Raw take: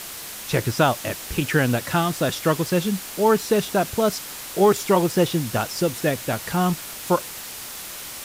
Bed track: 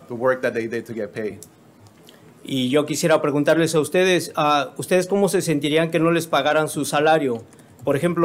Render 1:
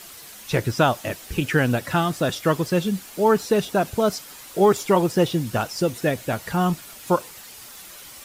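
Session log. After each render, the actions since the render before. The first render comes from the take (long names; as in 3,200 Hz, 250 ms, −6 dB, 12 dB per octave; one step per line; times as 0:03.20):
broadband denoise 9 dB, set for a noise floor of −36 dBFS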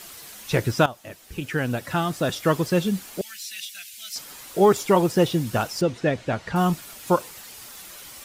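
0:00.86–0:02.57: fade in, from −16 dB
0:03.21–0:04.16: inverse Chebyshev high-pass filter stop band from 1,100 Hz
0:05.81–0:06.56: high-frequency loss of the air 110 metres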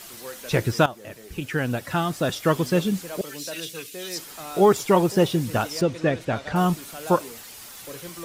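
mix in bed track −20 dB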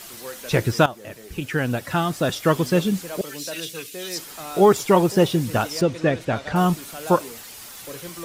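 level +2 dB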